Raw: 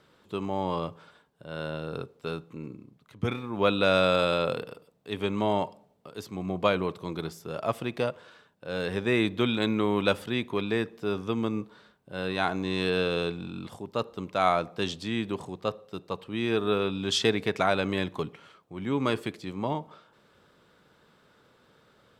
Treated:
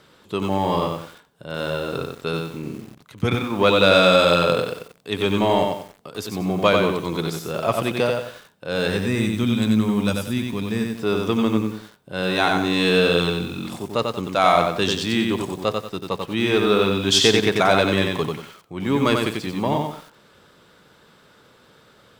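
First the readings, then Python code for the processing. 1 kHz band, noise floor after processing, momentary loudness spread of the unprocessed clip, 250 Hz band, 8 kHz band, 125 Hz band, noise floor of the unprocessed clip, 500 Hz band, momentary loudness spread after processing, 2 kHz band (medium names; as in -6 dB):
+8.5 dB, -54 dBFS, 13 LU, +8.5 dB, +13.0 dB, +8.5 dB, -63 dBFS, +8.0 dB, 14 LU, +8.5 dB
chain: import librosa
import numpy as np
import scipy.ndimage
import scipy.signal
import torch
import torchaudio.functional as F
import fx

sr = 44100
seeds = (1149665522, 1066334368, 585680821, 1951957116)

p1 = fx.high_shelf(x, sr, hz=3000.0, db=5.0)
p2 = fx.spec_box(p1, sr, start_s=8.97, length_s=1.93, low_hz=290.0, high_hz=4700.0, gain_db=-10)
p3 = 10.0 ** (-21.5 / 20.0) * np.tanh(p2 / 10.0 ** (-21.5 / 20.0))
p4 = p2 + (p3 * 10.0 ** (-6.0 / 20.0))
p5 = p4 + 10.0 ** (-20.5 / 20.0) * np.pad(p4, (int(110 * sr / 1000.0), 0))[:len(p4)]
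p6 = fx.echo_crushed(p5, sr, ms=92, feedback_pct=35, bits=8, wet_db=-3.5)
y = p6 * 10.0 ** (4.0 / 20.0)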